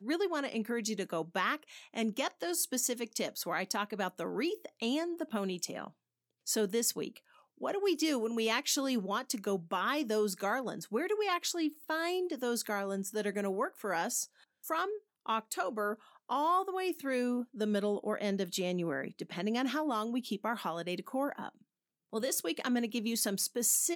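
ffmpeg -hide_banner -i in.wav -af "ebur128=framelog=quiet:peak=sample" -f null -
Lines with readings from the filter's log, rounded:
Integrated loudness:
  I:         -34.1 LUFS
  Threshold: -44.3 LUFS
Loudness range:
  LRA:         3.1 LU
  Threshold: -54.5 LUFS
  LRA low:   -36.0 LUFS
  LRA high:  -32.9 LUFS
Sample peak:
  Peak:      -15.9 dBFS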